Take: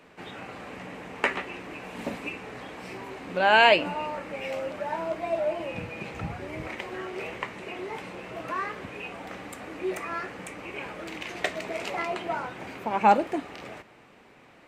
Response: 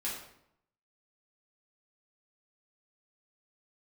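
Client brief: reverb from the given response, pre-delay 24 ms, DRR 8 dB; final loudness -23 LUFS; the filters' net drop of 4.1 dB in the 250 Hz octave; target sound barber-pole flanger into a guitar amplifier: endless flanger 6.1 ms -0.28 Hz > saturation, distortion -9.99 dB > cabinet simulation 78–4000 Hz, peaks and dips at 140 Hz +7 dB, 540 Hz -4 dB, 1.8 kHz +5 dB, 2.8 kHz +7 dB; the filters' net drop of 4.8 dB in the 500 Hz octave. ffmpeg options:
-filter_complex "[0:a]equalizer=f=250:t=o:g=-5,equalizer=f=500:t=o:g=-3.5,asplit=2[s0][s1];[1:a]atrim=start_sample=2205,adelay=24[s2];[s1][s2]afir=irnorm=-1:irlink=0,volume=0.282[s3];[s0][s3]amix=inputs=2:normalize=0,asplit=2[s4][s5];[s5]adelay=6.1,afreqshift=-0.28[s6];[s4][s6]amix=inputs=2:normalize=1,asoftclip=threshold=0.0841,highpass=78,equalizer=f=140:t=q:w=4:g=7,equalizer=f=540:t=q:w=4:g=-4,equalizer=f=1800:t=q:w=4:g=5,equalizer=f=2800:t=q:w=4:g=7,lowpass=f=4000:w=0.5412,lowpass=f=4000:w=1.3066,volume=3.35"

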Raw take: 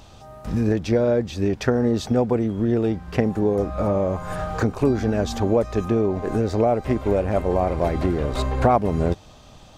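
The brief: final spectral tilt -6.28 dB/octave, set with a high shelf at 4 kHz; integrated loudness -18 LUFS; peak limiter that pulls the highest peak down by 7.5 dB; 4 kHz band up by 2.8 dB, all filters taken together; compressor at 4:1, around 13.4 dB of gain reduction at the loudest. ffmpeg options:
-af "highshelf=f=4000:g=-6.5,equalizer=f=4000:t=o:g=7,acompressor=threshold=0.0355:ratio=4,volume=5.62,alimiter=limit=0.398:level=0:latency=1"

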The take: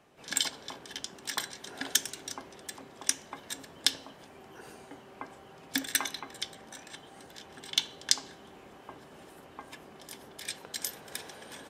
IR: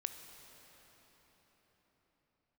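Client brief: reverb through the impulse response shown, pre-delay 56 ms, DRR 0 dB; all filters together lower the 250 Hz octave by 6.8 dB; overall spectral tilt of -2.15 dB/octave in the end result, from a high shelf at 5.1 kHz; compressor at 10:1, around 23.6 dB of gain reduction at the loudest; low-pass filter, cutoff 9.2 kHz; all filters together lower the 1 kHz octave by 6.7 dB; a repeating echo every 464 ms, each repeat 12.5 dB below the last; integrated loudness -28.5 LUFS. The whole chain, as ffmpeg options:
-filter_complex "[0:a]lowpass=9200,equalizer=f=250:t=o:g=-7.5,equalizer=f=1000:t=o:g=-8.5,highshelf=f=5100:g=8.5,acompressor=threshold=0.00708:ratio=10,aecho=1:1:464|928|1392:0.237|0.0569|0.0137,asplit=2[s0][s1];[1:a]atrim=start_sample=2205,adelay=56[s2];[s1][s2]afir=irnorm=-1:irlink=0,volume=1.12[s3];[s0][s3]amix=inputs=2:normalize=0,volume=7.08"

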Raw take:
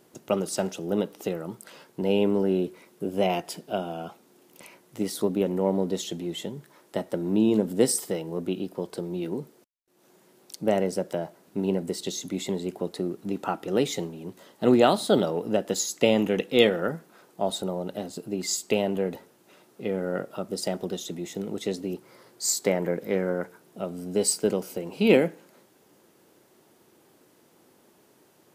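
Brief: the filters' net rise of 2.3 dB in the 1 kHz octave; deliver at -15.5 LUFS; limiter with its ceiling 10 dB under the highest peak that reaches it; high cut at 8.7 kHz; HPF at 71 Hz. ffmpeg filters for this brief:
-af "highpass=71,lowpass=8700,equalizer=f=1000:t=o:g=3.5,volume=4.73,alimiter=limit=0.944:level=0:latency=1"

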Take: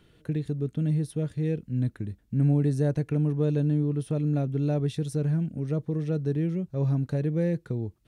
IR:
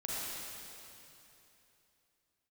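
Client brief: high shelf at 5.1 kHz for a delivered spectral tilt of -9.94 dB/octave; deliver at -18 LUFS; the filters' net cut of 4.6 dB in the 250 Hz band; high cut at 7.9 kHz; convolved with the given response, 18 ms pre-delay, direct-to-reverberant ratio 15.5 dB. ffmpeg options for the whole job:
-filter_complex "[0:a]lowpass=7900,equalizer=f=250:t=o:g=-8.5,highshelf=f=5100:g=-6.5,asplit=2[s0][s1];[1:a]atrim=start_sample=2205,adelay=18[s2];[s1][s2]afir=irnorm=-1:irlink=0,volume=0.112[s3];[s0][s3]amix=inputs=2:normalize=0,volume=4.22"

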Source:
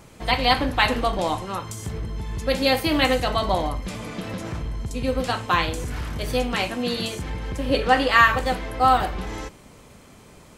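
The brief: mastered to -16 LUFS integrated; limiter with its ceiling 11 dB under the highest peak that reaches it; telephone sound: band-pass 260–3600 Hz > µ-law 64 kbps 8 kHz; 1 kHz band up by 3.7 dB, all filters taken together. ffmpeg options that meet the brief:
-af "equalizer=f=1000:t=o:g=5,alimiter=limit=0.282:level=0:latency=1,highpass=260,lowpass=3600,volume=2.82" -ar 8000 -c:a pcm_mulaw

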